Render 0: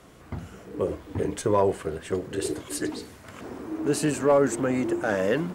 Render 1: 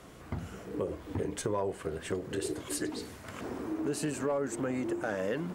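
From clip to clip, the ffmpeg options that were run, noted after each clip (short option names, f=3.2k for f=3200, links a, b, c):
-af "acompressor=threshold=-32dB:ratio=3"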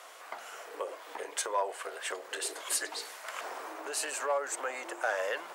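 -af "highpass=f=630:w=0.5412,highpass=f=630:w=1.3066,volume=6dB"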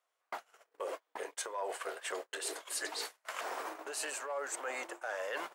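-af "agate=range=-39dB:threshold=-41dB:ratio=16:detection=peak,areverse,acompressor=threshold=-42dB:ratio=6,areverse,volume=5.5dB"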